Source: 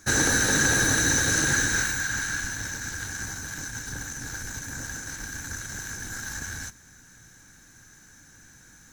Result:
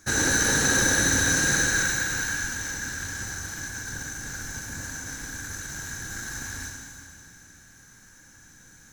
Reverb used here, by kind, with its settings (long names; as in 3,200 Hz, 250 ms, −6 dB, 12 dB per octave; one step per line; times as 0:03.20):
four-comb reverb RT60 2.4 s, combs from 33 ms, DRR 0.5 dB
level −2.5 dB